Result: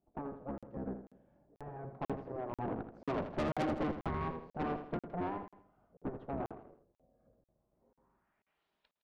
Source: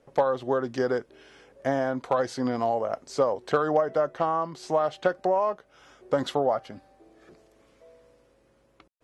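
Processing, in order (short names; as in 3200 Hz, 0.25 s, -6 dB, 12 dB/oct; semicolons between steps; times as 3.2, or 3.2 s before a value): octaver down 1 oct, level -3 dB; Doppler pass-by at 3.73, 16 m/s, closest 11 m; low-pass sweep 470 Hz -> 3700 Hz, 7.68–8.66; spectral gate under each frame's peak -10 dB weak; tube stage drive 38 dB, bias 0.7; feedback echo 81 ms, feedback 41%, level -9.5 dB; crackling interface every 0.49 s, samples 2048, zero, from 0.58; gain +6.5 dB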